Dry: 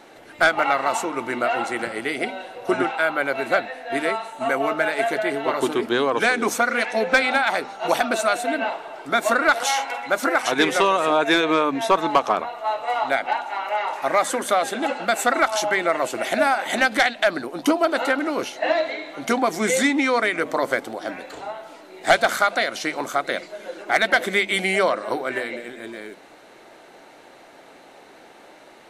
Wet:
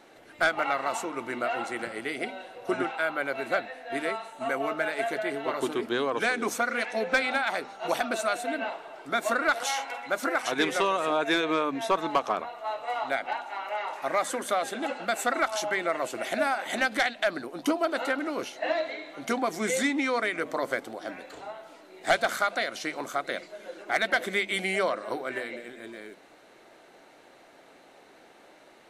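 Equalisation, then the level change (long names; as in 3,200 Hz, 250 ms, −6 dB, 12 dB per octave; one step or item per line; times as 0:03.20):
parametric band 870 Hz −2.5 dB 0.24 octaves
−7.0 dB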